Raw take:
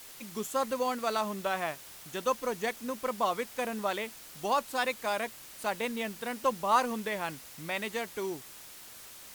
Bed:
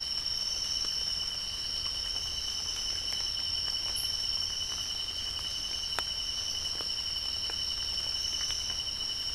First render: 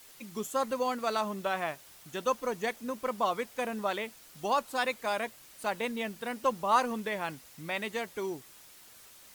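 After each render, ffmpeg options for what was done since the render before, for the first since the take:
-af "afftdn=nr=6:nf=-49"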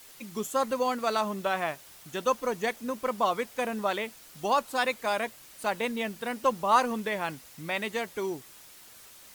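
-af "volume=1.41"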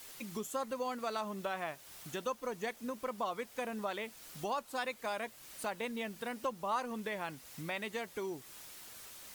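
-af "acompressor=threshold=0.00794:ratio=2"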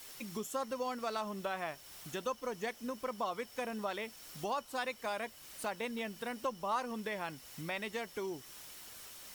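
-filter_complex "[1:a]volume=0.0355[s0];[0:a][s0]amix=inputs=2:normalize=0"

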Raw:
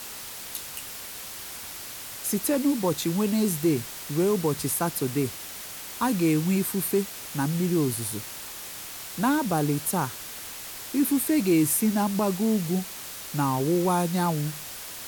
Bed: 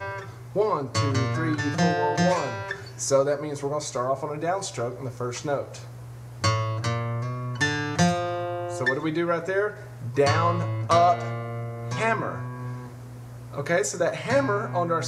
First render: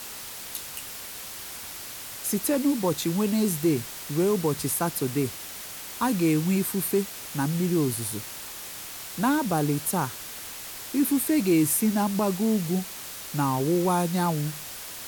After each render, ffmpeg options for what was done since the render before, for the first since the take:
-af anull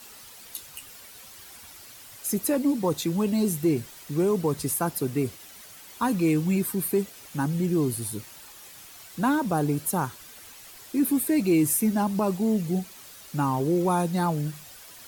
-af "afftdn=nr=10:nf=-39"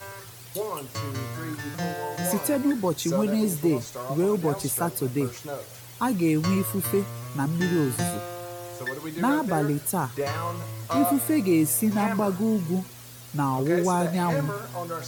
-filter_complex "[1:a]volume=0.398[s0];[0:a][s0]amix=inputs=2:normalize=0"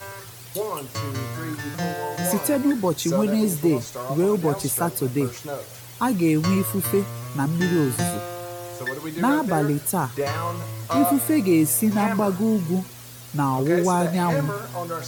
-af "volume=1.41"

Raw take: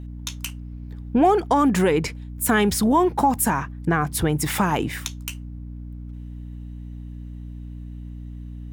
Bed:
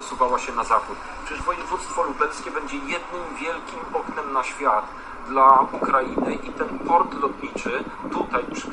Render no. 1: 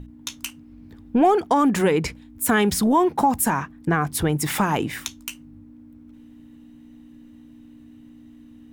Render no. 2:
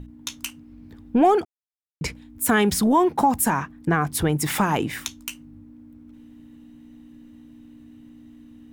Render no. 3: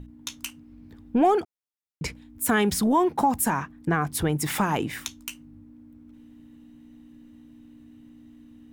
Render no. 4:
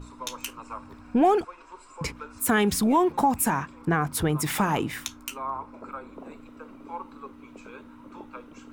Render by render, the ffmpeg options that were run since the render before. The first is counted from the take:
-af "bandreject=f=60:t=h:w=6,bandreject=f=120:t=h:w=6,bandreject=f=180:t=h:w=6"
-filter_complex "[0:a]asplit=3[s0][s1][s2];[s0]atrim=end=1.45,asetpts=PTS-STARTPTS,afade=t=out:st=1.446:d=0.004:c=hsin[s3];[s1]atrim=start=1.45:end=2.01,asetpts=PTS-STARTPTS,volume=0[s4];[s2]atrim=start=2.01,asetpts=PTS-STARTPTS,afade=t=in:d=0.004:c=hsin[s5];[s3][s4][s5]concat=n=3:v=0:a=1"
-af "volume=0.708"
-filter_complex "[1:a]volume=0.106[s0];[0:a][s0]amix=inputs=2:normalize=0"

